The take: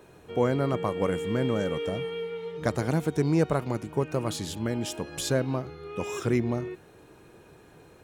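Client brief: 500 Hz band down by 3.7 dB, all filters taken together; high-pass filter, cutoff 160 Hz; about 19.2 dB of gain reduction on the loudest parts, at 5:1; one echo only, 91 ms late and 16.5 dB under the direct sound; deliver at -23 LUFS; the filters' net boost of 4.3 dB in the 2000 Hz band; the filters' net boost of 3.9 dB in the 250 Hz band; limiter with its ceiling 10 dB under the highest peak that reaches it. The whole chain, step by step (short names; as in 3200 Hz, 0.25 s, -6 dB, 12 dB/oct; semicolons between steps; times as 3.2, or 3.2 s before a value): HPF 160 Hz; bell 250 Hz +8 dB; bell 500 Hz -7.5 dB; bell 2000 Hz +6 dB; compressor 5:1, threshold -41 dBFS; limiter -35 dBFS; echo 91 ms -16.5 dB; gain +22.5 dB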